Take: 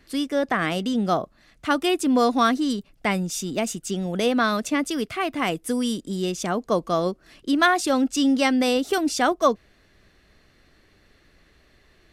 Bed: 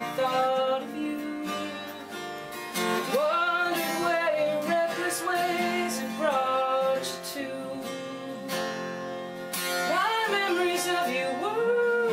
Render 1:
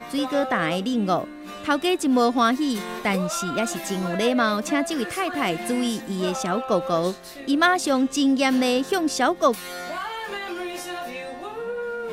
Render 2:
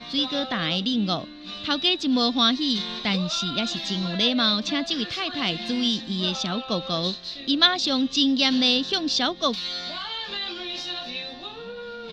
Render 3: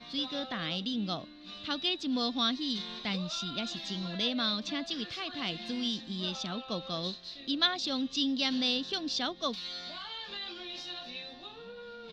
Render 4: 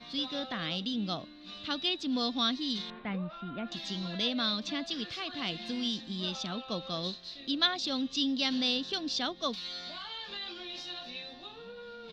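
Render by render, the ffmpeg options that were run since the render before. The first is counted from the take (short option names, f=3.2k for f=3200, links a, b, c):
-filter_complex "[1:a]volume=-5.5dB[a];[0:a][a]amix=inputs=2:normalize=0"
-af "firequalizer=gain_entry='entry(220,0);entry(380,-8);entry(2100,-4);entry(3800,15);entry(9200,-27)':delay=0.05:min_phase=1"
-af "volume=-9.5dB"
-filter_complex "[0:a]asettb=1/sr,asplit=3[a][b][c];[a]atrim=end=2.904[d];[b]atrim=start=2.9:end=3.72,asetpts=PTS-STARTPTS,afade=t=in:d=0.004:c=qsin,afade=t=out:st=0.816:d=0.004:c=qsin,lowpass=f=2.1k:w=0.5412,lowpass=f=2.1k:w=1.3066[e];[c]atrim=start=3.716[f];[d][e]acrossfade=d=0.004:c1=hsin:c2=qsin[g];[g][f]acrossfade=d=0.004:c1=qsin:c2=hsin"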